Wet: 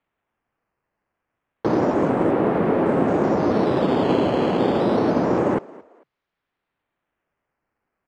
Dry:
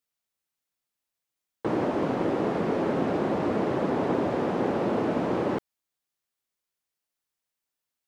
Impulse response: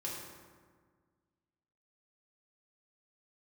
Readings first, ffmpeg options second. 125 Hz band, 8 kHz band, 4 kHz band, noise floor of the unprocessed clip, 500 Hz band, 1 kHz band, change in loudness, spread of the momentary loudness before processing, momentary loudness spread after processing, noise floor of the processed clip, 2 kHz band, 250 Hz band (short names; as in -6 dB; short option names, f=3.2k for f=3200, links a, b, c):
+7.0 dB, n/a, +7.5 dB, under -85 dBFS, +7.0 dB, +6.5 dB, +7.0 dB, 2 LU, 2 LU, -82 dBFS, +5.0 dB, +7.0 dB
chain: -filter_complex "[0:a]acrusher=samples=8:mix=1:aa=0.000001:lfo=1:lforange=8:lforate=0.29,lowpass=2.4k,asplit=3[a][b][c];[b]adelay=223,afreqshift=63,volume=-22dB[d];[c]adelay=446,afreqshift=126,volume=-32.5dB[e];[a][d][e]amix=inputs=3:normalize=0,volume=7dB"